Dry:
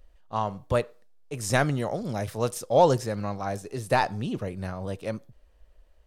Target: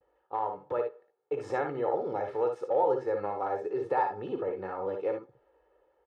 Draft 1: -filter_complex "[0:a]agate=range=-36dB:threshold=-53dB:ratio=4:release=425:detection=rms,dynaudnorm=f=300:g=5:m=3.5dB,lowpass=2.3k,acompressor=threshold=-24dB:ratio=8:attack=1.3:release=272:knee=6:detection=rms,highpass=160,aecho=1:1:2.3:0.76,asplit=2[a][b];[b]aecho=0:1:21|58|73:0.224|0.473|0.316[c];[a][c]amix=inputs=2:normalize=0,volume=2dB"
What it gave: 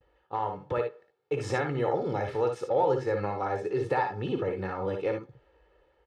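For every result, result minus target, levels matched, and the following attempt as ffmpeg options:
125 Hz band +11.5 dB; 2000 Hz band +4.5 dB
-filter_complex "[0:a]agate=range=-36dB:threshold=-53dB:ratio=4:release=425:detection=rms,dynaudnorm=f=300:g=5:m=3.5dB,lowpass=2.3k,acompressor=threshold=-24dB:ratio=8:attack=1.3:release=272:knee=6:detection=rms,highpass=380,aecho=1:1:2.3:0.76,asplit=2[a][b];[b]aecho=0:1:21|58|73:0.224|0.473|0.316[c];[a][c]amix=inputs=2:normalize=0,volume=2dB"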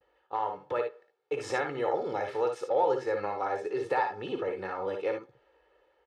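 2000 Hz band +5.5 dB
-filter_complex "[0:a]agate=range=-36dB:threshold=-53dB:ratio=4:release=425:detection=rms,dynaudnorm=f=300:g=5:m=3.5dB,lowpass=1.1k,acompressor=threshold=-24dB:ratio=8:attack=1.3:release=272:knee=6:detection=rms,highpass=380,aecho=1:1:2.3:0.76,asplit=2[a][b];[b]aecho=0:1:21|58|73:0.224|0.473|0.316[c];[a][c]amix=inputs=2:normalize=0,volume=2dB"

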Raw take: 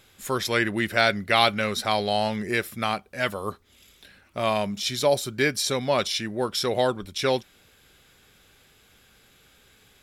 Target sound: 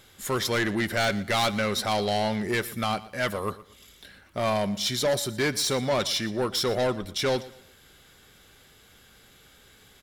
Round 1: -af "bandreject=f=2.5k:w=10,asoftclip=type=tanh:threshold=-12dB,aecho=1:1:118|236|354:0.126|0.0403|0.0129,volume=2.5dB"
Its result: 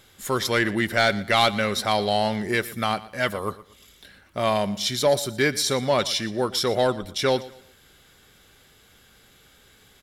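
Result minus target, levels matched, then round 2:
soft clip: distortion -10 dB
-af "bandreject=f=2.5k:w=10,asoftclip=type=tanh:threshold=-22.5dB,aecho=1:1:118|236|354:0.126|0.0403|0.0129,volume=2.5dB"

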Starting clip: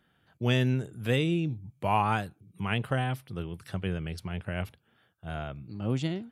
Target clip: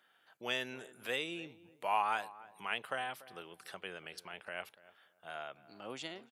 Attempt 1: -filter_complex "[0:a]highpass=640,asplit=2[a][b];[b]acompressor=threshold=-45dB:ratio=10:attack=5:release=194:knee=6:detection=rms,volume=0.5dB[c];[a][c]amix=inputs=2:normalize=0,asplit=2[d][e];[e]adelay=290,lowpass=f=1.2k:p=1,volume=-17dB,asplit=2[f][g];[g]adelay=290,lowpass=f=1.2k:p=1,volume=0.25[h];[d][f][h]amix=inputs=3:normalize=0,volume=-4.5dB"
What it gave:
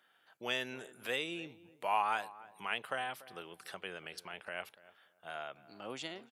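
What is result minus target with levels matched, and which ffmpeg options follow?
compressor: peak gain reduction -6 dB
-filter_complex "[0:a]highpass=640,asplit=2[a][b];[b]acompressor=threshold=-51.5dB:ratio=10:attack=5:release=194:knee=6:detection=rms,volume=0.5dB[c];[a][c]amix=inputs=2:normalize=0,asplit=2[d][e];[e]adelay=290,lowpass=f=1.2k:p=1,volume=-17dB,asplit=2[f][g];[g]adelay=290,lowpass=f=1.2k:p=1,volume=0.25[h];[d][f][h]amix=inputs=3:normalize=0,volume=-4.5dB"

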